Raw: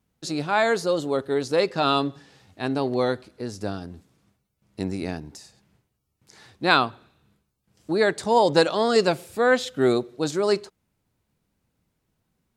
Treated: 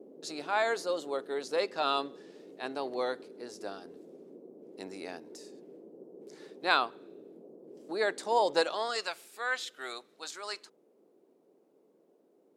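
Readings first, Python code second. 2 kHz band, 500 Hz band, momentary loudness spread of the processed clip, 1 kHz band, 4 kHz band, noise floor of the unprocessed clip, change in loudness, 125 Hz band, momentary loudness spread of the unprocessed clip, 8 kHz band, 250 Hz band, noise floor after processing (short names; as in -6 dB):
-7.5 dB, -11.0 dB, 23 LU, -7.5 dB, -7.5 dB, -77 dBFS, -9.5 dB, -26.5 dB, 12 LU, -7.5 dB, -16.5 dB, -67 dBFS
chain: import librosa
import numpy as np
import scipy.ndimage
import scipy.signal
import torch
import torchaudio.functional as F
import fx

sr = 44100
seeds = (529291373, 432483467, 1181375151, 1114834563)

y = fx.dmg_noise_band(x, sr, seeds[0], low_hz=150.0, high_hz=440.0, level_db=-37.0)
y = fx.filter_sweep_highpass(y, sr, from_hz=470.0, to_hz=1200.0, start_s=8.59, end_s=9.1, q=0.82)
y = y * 10.0 ** (-7.5 / 20.0)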